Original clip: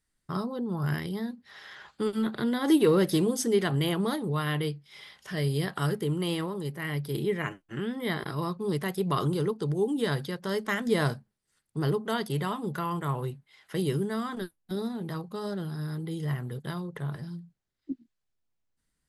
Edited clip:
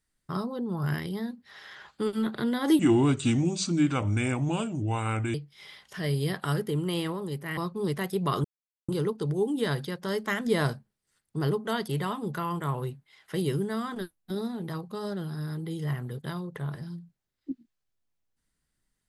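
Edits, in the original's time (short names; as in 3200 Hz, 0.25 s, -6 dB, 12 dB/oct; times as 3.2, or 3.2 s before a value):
2.79–4.68 speed 74%
6.91–8.42 cut
9.29 insert silence 0.44 s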